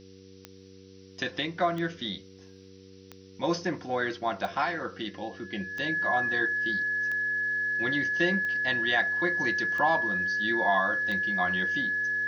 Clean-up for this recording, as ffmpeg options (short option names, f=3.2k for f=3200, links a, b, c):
-af "adeclick=t=4,bandreject=f=95.4:t=h:w=4,bandreject=f=190.8:t=h:w=4,bandreject=f=286.2:t=h:w=4,bandreject=f=381.6:t=h:w=4,bandreject=f=477:t=h:w=4,bandreject=f=1.7k:w=30,afftdn=nr=24:nf=-51"